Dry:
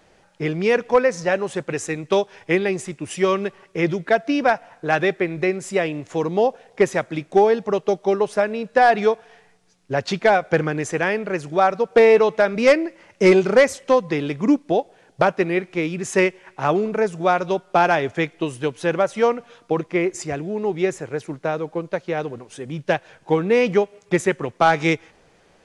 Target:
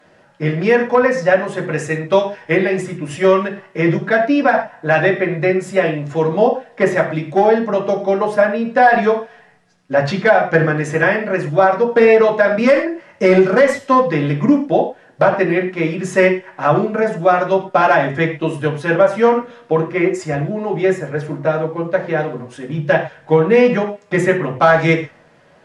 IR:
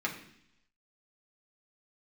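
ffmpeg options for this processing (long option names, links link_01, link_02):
-filter_complex "[0:a]equalizer=frequency=600:width=3.2:gain=4[link_01];[1:a]atrim=start_sample=2205,atrim=end_sample=4410,asetrate=34398,aresample=44100[link_02];[link_01][link_02]afir=irnorm=-1:irlink=0,alimiter=level_in=-0.5dB:limit=-1dB:release=50:level=0:latency=1,volume=-1dB"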